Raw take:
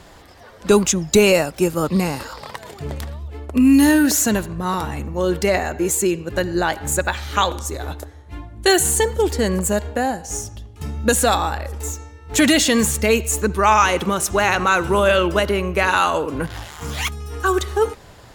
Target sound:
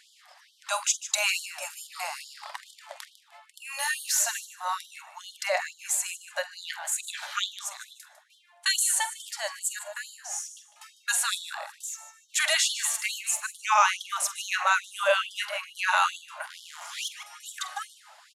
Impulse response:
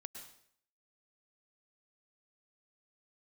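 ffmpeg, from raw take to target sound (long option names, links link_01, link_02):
-filter_complex "[0:a]lowpass=frequency=12000:width=0.5412,lowpass=frequency=12000:width=1.3066,asplit=2[link_01][link_02];[link_02]adelay=46,volume=-14dB[link_03];[link_01][link_03]amix=inputs=2:normalize=0,asplit=2[link_04][link_05];[link_05]aecho=0:1:151|302|453:0.211|0.0528|0.0132[link_06];[link_04][link_06]amix=inputs=2:normalize=0,afftfilt=real='re*gte(b*sr/1024,540*pow(3000/540,0.5+0.5*sin(2*PI*2.3*pts/sr)))':imag='im*gte(b*sr/1024,540*pow(3000/540,0.5+0.5*sin(2*PI*2.3*pts/sr)))':win_size=1024:overlap=0.75,volume=-5.5dB"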